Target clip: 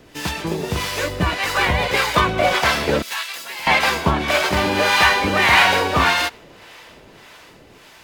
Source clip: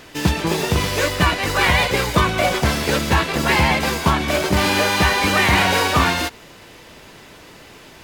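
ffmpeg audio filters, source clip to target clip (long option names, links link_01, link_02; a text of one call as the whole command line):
ffmpeg -i in.wav -filter_complex "[0:a]acrossover=split=640[link_01][link_02];[link_01]aeval=exprs='val(0)*(1-0.7/2+0.7/2*cos(2*PI*1.7*n/s))':channel_layout=same[link_03];[link_02]aeval=exprs='val(0)*(1-0.7/2-0.7/2*cos(2*PI*1.7*n/s))':channel_layout=same[link_04];[link_03][link_04]amix=inputs=2:normalize=0,acrossover=split=430|4500[link_05][link_06][link_07];[link_06]dynaudnorm=framelen=500:gausssize=7:maxgain=11.5dB[link_08];[link_07]aeval=exprs='0.133*(cos(1*acos(clip(val(0)/0.133,-1,1)))-cos(1*PI/2))+0.00944*(cos(4*acos(clip(val(0)/0.133,-1,1)))-cos(4*PI/2))':channel_layout=same[link_09];[link_05][link_08][link_09]amix=inputs=3:normalize=0,asettb=1/sr,asplit=3[link_10][link_11][link_12];[link_10]atrim=end=3.024[link_13];[link_11]atrim=start=3.02:end=3.67,asetpts=PTS-STARTPTS,afade=type=in:duration=0.004:curve=qsin,afade=type=out:start_time=0.646:duration=0.004:curve=qsin,aderivative[link_14];[link_12]atrim=start=3.666[link_15];[link_13][link_14]acrossfade=duration=0.004:curve1=hsin:curve2=qsin[link_16];[link_16][link_15]acrossfade=duration=0.004:curve1=qsin:curve2=hsin,volume=-1dB" out.wav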